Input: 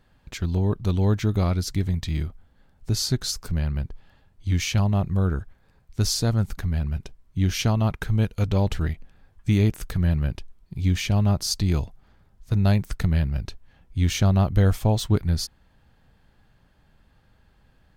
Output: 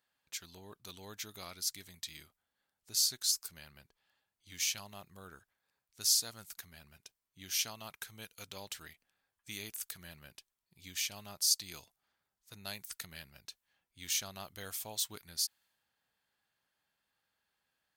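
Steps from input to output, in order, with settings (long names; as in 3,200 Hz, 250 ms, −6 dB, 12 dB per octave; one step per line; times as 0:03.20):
first difference
one half of a high-frequency compander decoder only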